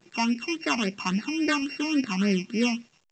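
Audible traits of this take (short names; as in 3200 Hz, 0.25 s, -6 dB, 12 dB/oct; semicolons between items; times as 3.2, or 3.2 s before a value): a buzz of ramps at a fixed pitch in blocks of 16 samples; phasing stages 8, 3.6 Hz, lowest notch 470–1100 Hz; a quantiser's noise floor 10-bit, dither none; A-law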